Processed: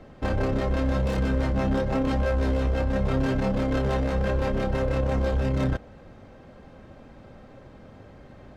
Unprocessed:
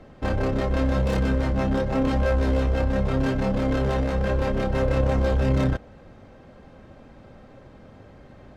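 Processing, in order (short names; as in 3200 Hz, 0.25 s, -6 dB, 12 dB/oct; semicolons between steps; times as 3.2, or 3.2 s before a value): limiter -17 dBFS, peak gain reduction 6 dB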